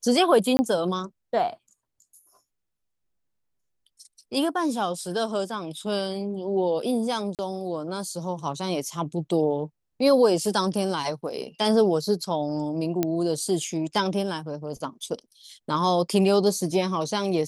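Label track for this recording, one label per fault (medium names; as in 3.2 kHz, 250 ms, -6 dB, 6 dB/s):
0.570000	0.590000	dropout 20 ms
7.350000	7.390000	dropout 38 ms
13.030000	13.030000	pop -10 dBFS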